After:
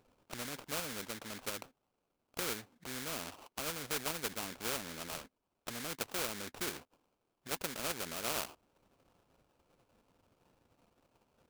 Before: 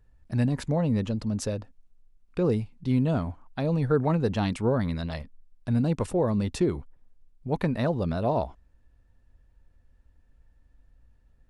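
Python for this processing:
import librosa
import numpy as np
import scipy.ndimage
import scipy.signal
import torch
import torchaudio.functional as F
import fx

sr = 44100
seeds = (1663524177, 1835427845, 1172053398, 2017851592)

p1 = fx.env_lowpass_down(x, sr, base_hz=630.0, full_db=-25.0)
p2 = scipy.signal.sosfilt(scipy.signal.butter(2, 430.0, 'highpass', fs=sr, output='sos'), p1)
p3 = fx.level_steps(p2, sr, step_db=16)
p4 = p2 + (p3 * librosa.db_to_amplitude(-2.5))
p5 = fx.sample_hold(p4, sr, seeds[0], rate_hz=1900.0, jitter_pct=20)
p6 = fx.spectral_comp(p5, sr, ratio=2.0)
y = p6 * librosa.db_to_amplitude(-1.5)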